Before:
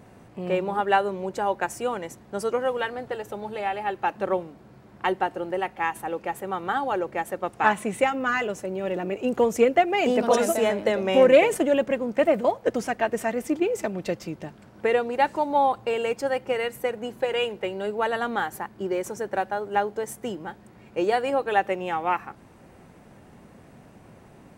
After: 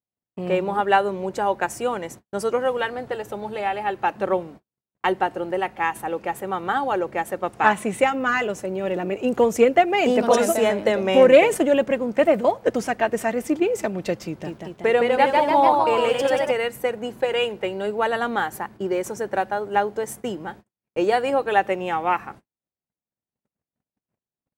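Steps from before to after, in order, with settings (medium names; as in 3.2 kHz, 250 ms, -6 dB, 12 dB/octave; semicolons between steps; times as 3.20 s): gate -43 dBFS, range -52 dB; 14.25–16.51 s: ever faster or slower copies 197 ms, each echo +1 st, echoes 3; trim +3 dB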